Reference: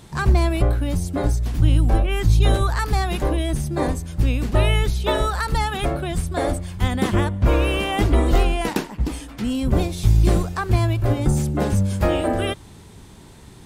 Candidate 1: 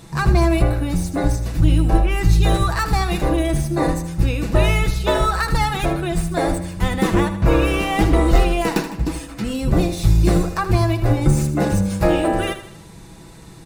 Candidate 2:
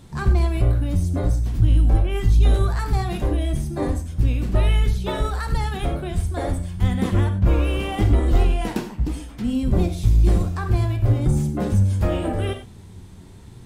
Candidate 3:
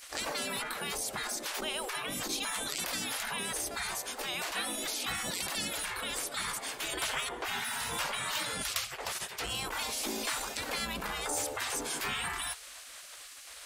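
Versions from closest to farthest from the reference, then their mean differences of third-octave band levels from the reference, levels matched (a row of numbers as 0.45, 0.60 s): 1, 2, 3; 2.5, 3.5, 15.0 dB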